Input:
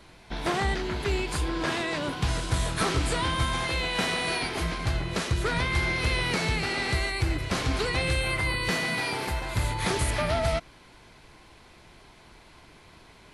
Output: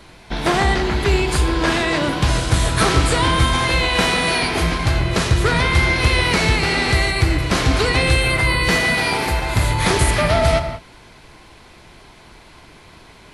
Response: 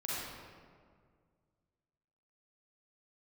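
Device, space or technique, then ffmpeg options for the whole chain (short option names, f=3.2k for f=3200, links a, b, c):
keyed gated reverb: -filter_complex "[0:a]asplit=3[a][b][c];[1:a]atrim=start_sample=2205[d];[b][d]afir=irnorm=-1:irlink=0[e];[c]apad=whole_len=588091[f];[e][f]sidechaingate=range=-33dB:threshold=-47dB:ratio=16:detection=peak,volume=-9.5dB[g];[a][g]amix=inputs=2:normalize=0,volume=8dB"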